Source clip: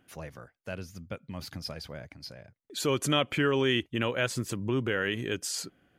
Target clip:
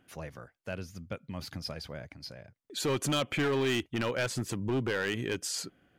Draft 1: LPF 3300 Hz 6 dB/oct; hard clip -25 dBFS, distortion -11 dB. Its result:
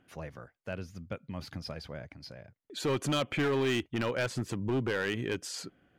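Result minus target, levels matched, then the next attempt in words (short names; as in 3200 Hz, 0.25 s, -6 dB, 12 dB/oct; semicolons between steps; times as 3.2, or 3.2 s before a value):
8000 Hz band -5.0 dB
LPF 11000 Hz 6 dB/oct; hard clip -25 dBFS, distortion -10 dB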